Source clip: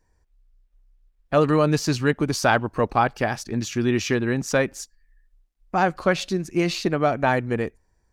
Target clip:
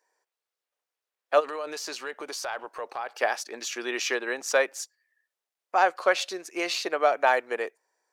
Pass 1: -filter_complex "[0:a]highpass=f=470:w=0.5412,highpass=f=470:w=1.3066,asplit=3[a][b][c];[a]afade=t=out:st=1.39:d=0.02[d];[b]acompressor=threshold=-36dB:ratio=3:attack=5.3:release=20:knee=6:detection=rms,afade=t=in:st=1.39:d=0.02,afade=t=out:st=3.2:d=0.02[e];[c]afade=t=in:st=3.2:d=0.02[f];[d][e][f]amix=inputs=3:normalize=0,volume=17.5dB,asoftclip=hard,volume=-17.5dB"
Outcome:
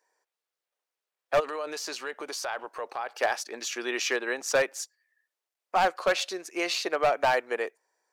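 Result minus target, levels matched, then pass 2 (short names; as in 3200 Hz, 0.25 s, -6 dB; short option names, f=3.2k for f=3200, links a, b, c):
overloaded stage: distortion +30 dB
-filter_complex "[0:a]highpass=f=470:w=0.5412,highpass=f=470:w=1.3066,asplit=3[a][b][c];[a]afade=t=out:st=1.39:d=0.02[d];[b]acompressor=threshold=-36dB:ratio=3:attack=5.3:release=20:knee=6:detection=rms,afade=t=in:st=1.39:d=0.02,afade=t=out:st=3.2:d=0.02[e];[c]afade=t=in:st=3.2:d=0.02[f];[d][e][f]amix=inputs=3:normalize=0,volume=9.5dB,asoftclip=hard,volume=-9.5dB"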